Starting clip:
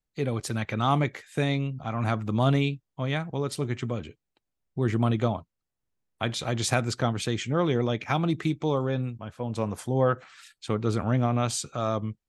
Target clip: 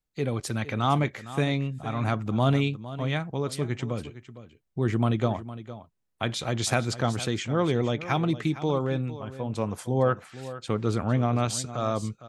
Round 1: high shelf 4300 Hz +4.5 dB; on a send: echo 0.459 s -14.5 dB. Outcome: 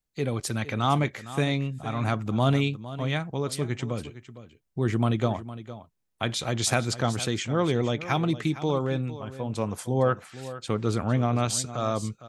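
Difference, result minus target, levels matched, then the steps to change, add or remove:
8000 Hz band +3.0 dB
remove: high shelf 4300 Hz +4.5 dB

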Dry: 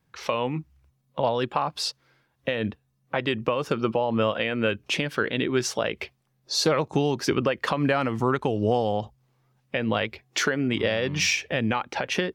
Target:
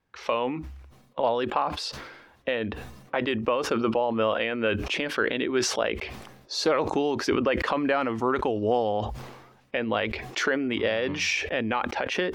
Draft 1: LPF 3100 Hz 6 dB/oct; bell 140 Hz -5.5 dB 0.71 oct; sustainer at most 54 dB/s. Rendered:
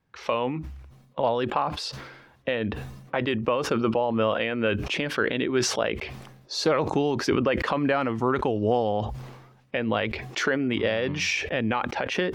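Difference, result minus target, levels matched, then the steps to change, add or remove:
125 Hz band +4.5 dB
change: bell 140 Hz -16.5 dB 0.71 oct

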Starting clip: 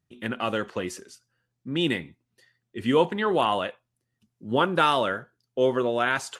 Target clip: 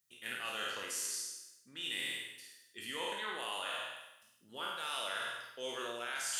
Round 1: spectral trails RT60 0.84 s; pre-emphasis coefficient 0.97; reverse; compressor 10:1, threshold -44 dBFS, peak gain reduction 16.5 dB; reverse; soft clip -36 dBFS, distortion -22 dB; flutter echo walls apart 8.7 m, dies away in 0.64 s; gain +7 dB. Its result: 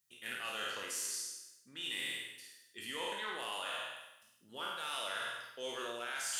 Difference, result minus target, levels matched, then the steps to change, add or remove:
soft clip: distortion +20 dB
change: soft clip -25 dBFS, distortion -42 dB

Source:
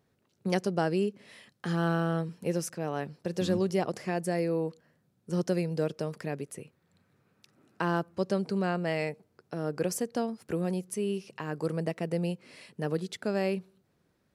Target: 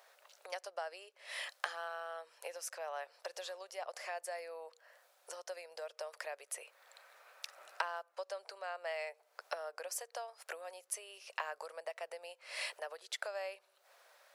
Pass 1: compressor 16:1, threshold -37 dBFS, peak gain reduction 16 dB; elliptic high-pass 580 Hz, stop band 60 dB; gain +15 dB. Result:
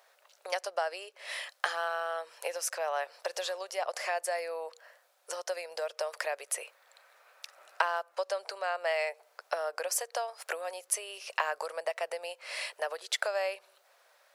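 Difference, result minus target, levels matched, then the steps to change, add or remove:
compressor: peak gain reduction -10 dB
change: compressor 16:1, threshold -47.5 dBFS, peak gain reduction 26 dB

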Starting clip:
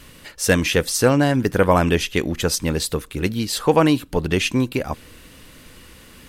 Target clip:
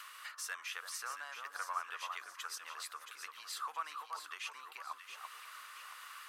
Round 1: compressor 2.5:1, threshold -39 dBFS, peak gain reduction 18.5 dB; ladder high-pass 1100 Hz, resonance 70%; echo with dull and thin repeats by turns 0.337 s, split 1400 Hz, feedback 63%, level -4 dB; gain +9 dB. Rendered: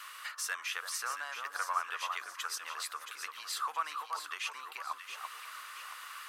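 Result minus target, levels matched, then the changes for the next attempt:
compressor: peak gain reduction -5.5 dB
change: compressor 2.5:1, threshold -48.5 dBFS, peak gain reduction 24.5 dB

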